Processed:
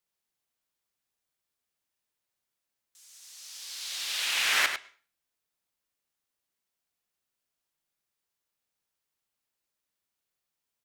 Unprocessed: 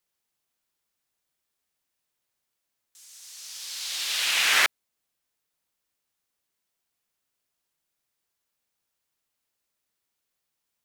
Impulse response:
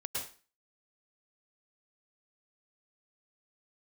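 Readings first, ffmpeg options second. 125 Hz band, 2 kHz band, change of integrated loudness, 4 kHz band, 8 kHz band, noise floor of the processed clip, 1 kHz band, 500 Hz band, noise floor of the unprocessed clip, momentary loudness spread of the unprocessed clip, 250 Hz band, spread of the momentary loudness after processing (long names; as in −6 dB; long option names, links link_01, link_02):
can't be measured, −4.0 dB, −4.5 dB, −4.0 dB, −4.5 dB, below −85 dBFS, −4.0 dB, −4.0 dB, −82 dBFS, 19 LU, −4.0 dB, 19 LU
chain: -filter_complex "[0:a]asplit=2[link_01][link_02];[link_02]adelay=99.13,volume=-8dB,highshelf=frequency=4000:gain=-2.23[link_03];[link_01][link_03]amix=inputs=2:normalize=0,asplit=2[link_04][link_05];[1:a]atrim=start_sample=2205,lowpass=6400[link_06];[link_05][link_06]afir=irnorm=-1:irlink=0,volume=-21dB[link_07];[link_04][link_07]amix=inputs=2:normalize=0,volume=-5dB"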